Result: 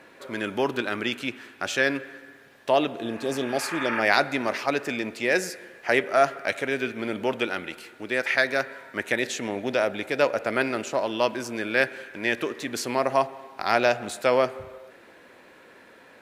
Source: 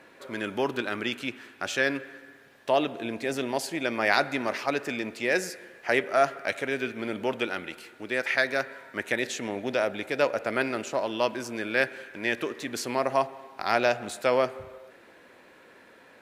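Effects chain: spectral replace 3.04–3.98 s, 840–2900 Hz both; trim +2.5 dB

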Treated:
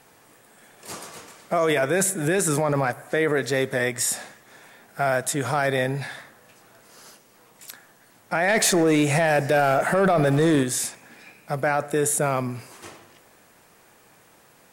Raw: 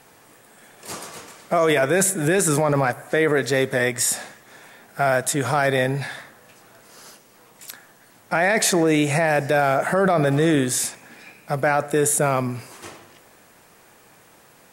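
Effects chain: 8.48–10.63 s: waveshaping leveller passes 1; trim -3 dB

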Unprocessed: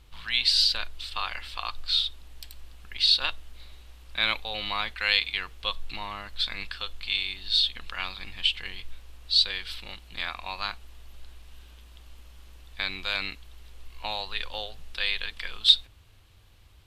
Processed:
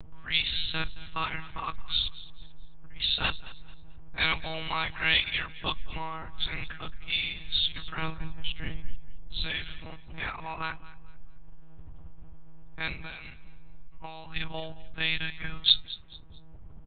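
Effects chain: level-controlled noise filter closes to 650 Hz, open at -21.5 dBFS; 7.99–9.45 s: tilt shelf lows +6.5 dB; 12.93–14.36 s: compression 12:1, threshold -38 dBFS, peak gain reduction 14 dB; monotone LPC vocoder at 8 kHz 160 Hz; upward compressor, threshold -38 dBFS; bass shelf 140 Hz +4.5 dB; feedback delay 220 ms, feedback 32%, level -18.5 dB

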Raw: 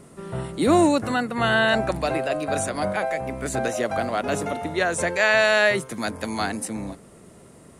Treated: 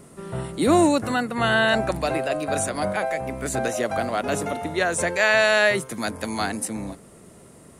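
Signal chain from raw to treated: treble shelf 11 kHz +7.5 dB

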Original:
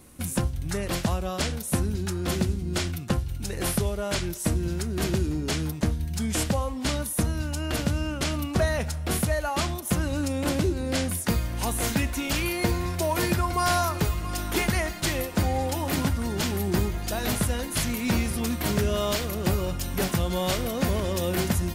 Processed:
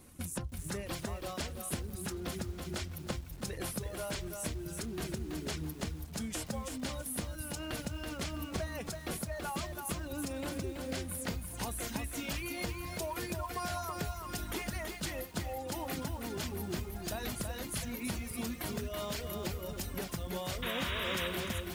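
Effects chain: reverb removal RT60 1.4 s; compression, threshold -30 dBFS, peak gain reduction 10.5 dB; pre-echo 121 ms -23 dB; painted sound noise, 20.62–21.28 s, 890–3900 Hz -33 dBFS; bit-crushed delay 329 ms, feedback 35%, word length 8-bit, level -4 dB; trim -5.5 dB

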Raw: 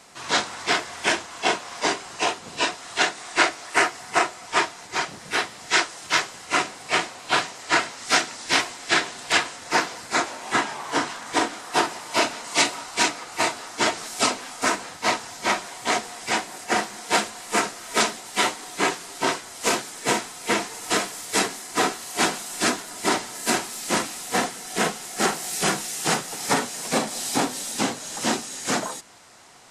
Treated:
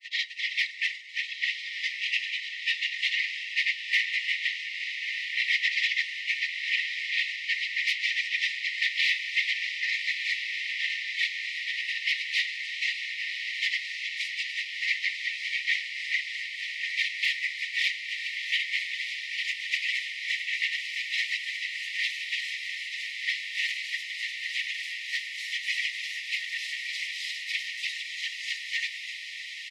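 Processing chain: comb 5.7 ms, depth 30%; in parallel at -2 dB: compression, threshold -31 dBFS, peak gain reduction 17 dB; on the sum: granulator 100 ms, grains 20 per s, spray 262 ms, pitch spread up and down by 0 st; flange 0.51 Hz, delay 6.2 ms, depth 7.9 ms, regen +69%; tremolo 3.3 Hz, depth 58%; whisper effect; sine folder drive 9 dB, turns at -11 dBFS; brick-wall FIR high-pass 1.8 kHz; distance through air 340 m; echo that smears into a reverb 1282 ms, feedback 73%, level -7 dB

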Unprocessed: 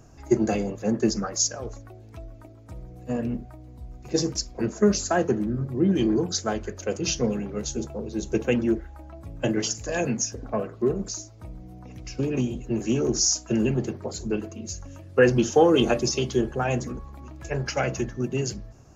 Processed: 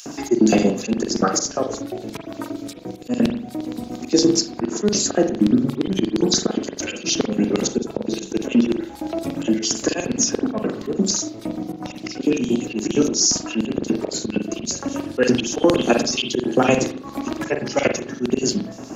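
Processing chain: LFO high-pass square 8.6 Hz 260–3800 Hz; dynamic bell 150 Hz, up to +3 dB, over -36 dBFS, Q 1.1; in parallel at -2 dB: compression, threshold -31 dBFS, peak gain reduction 20.5 dB; on the sum: slow attack 187 ms; on a send at -5.5 dB: reverberation, pre-delay 42 ms; on the sum: loudness maximiser +11.5 dB; three bands compressed up and down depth 40%; trim -2.5 dB

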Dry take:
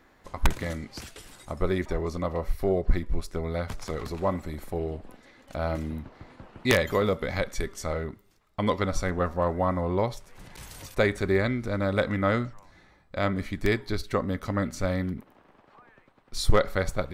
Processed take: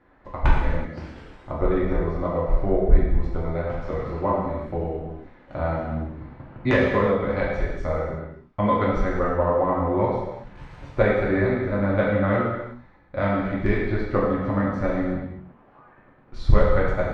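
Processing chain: low-pass 1.8 kHz 12 dB/octave; transient shaper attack +5 dB, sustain 0 dB; gated-style reverb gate 400 ms falling, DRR -6 dB; trim -3.5 dB

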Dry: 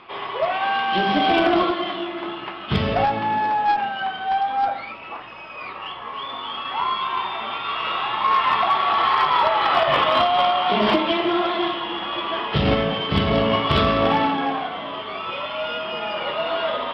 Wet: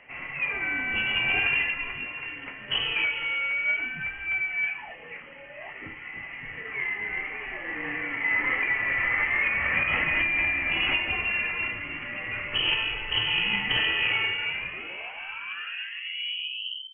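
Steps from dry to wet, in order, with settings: tape stop on the ending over 2.47 s; frequency inversion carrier 3.1 kHz; trim -7 dB

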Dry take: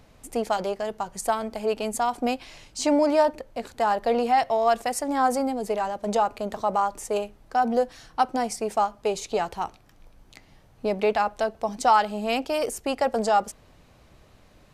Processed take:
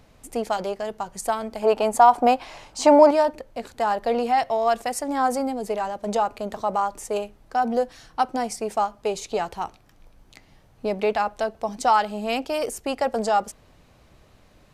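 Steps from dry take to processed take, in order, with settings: 1.62–3.11 s: peaking EQ 860 Hz +12.5 dB 1.7 oct

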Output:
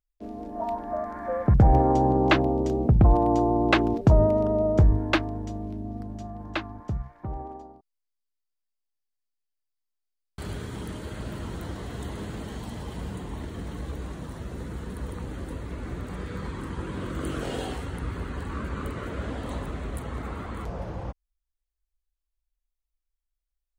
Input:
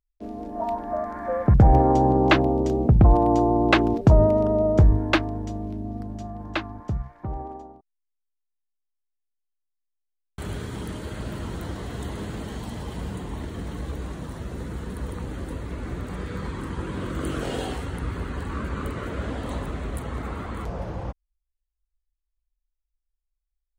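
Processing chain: 7.61–10.53 s: peaking EQ 4.7 kHz +8 dB 0.26 oct; trim -2.5 dB

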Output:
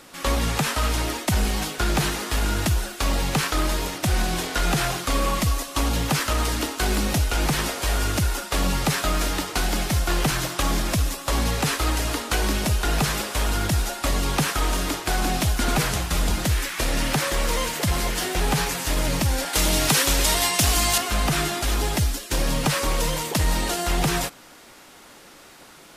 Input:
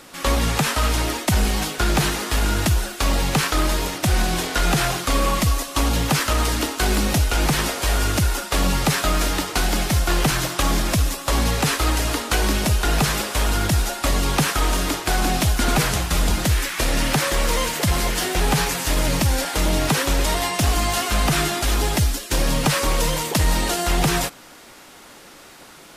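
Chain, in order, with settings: 19.53–20.98 s: treble shelf 2.3 kHz +9 dB; trim -3 dB

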